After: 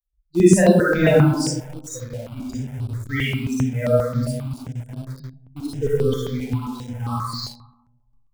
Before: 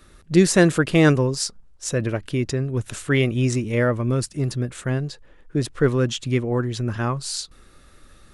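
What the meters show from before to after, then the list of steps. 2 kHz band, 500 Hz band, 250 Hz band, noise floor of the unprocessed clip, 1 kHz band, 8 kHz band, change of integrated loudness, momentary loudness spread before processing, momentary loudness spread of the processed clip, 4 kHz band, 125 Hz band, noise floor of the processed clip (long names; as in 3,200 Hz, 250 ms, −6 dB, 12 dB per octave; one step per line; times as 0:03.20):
−1.5 dB, +2.0 dB, +1.0 dB, −51 dBFS, +1.5 dB, −2.5 dB, +1.5 dB, 11 LU, 18 LU, −3.0 dB, −0.5 dB, −62 dBFS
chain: spectral dynamics exaggerated over time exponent 3
comb and all-pass reverb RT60 1.2 s, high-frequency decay 0.35×, pre-delay 15 ms, DRR −9 dB
in parallel at −7.5 dB: bit reduction 5 bits
on the sum: step-sequenced phaser 7.5 Hz 320–6,600 Hz
level −3.5 dB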